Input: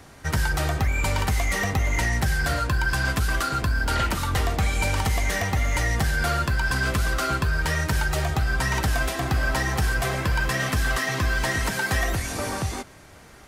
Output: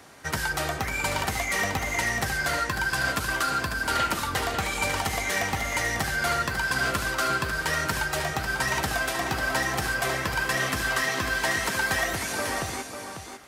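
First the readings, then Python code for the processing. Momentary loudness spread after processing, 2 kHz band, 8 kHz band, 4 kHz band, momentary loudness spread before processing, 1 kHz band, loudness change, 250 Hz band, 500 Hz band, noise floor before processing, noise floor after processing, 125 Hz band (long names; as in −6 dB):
3 LU, +0.5 dB, +0.5 dB, +0.5 dB, 1 LU, +0.5 dB, −2.0 dB, −4.0 dB, −0.5 dB, −48 dBFS, −38 dBFS, −10.0 dB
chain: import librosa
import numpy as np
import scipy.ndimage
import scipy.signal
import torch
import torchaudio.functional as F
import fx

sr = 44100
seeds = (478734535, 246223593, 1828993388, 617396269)

y = fx.highpass(x, sr, hz=310.0, slope=6)
y = y + 10.0 ** (-7.5 / 20.0) * np.pad(y, (int(546 * sr / 1000.0), 0))[:len(y)]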